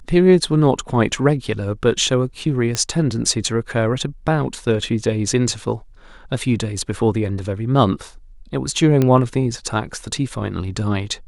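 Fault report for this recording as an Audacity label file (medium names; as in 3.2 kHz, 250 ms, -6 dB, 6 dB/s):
2.750000	2.750000	pop -7 dBFS
9.020000	9.020000	pop -6 dBFS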